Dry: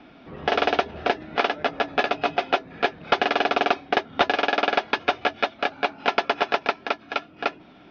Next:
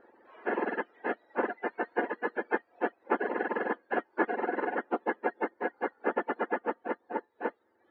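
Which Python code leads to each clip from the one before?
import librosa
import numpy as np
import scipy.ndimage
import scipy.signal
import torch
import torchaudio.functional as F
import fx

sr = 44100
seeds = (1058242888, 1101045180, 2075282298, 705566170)

y = fx.octave_mirror(x, sr, pivot_hz=1100.0)
y = fx.dereverb_blind(y, sr, rt60_s=0.84)
y = scipy.signal.sosfilt(scipy.signal.butter(4, 1800.0, 'lowpass', fs=sr, output='sos'), y)
y = F.gain(torch.from_numpy(y), -4.0).numpy()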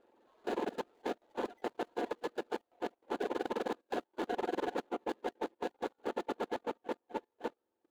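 y = scipy.signal.medfilt(x, 25)
y = fx.level_steps(y, sr, step_db=17)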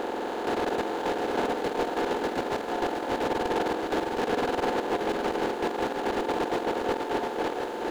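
y = fx.bin_compress(x, sr, power=0.2)
y = np.clip(y, -10.0 ** (-28.0 / 20.0), 10.0 ** (-28.0 / 20.0))
y = y + 10.0 ** (-4.5 / 20.0) * np.pad(y, (int(713 * sr / 1000.0), 0))[:len(y)]
y = F.gain(torch.from_numpy(y), 4.5).numpy()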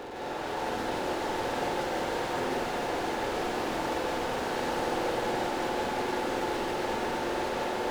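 y = 10.0 ** (-35.5 / 20.0) * np.tanh(x / 10.0 ** (-35.5 / 20.0))
y = fx.rev_plate(y, sr, seeds[0], rt60_s=4.7, hf_ratio=1.0, predelay_ms=115, drr_db=-9.0)
y = F.gain(torch.from_numpy(y), -2.5).numpy()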